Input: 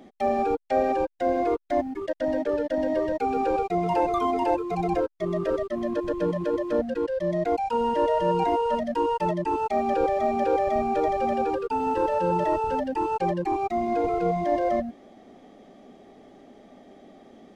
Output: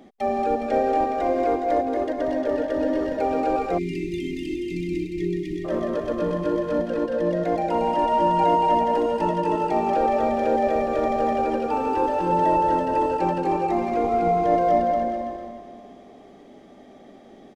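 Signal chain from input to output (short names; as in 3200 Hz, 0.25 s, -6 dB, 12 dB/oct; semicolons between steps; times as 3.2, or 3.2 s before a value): regenerating reverse delay 0.145 s, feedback 65%, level -12 dB; bouncing-ball echo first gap 0.23 s, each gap 0.8×, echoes 5; spectral delete 3.78–5.65, 410–1800 Hz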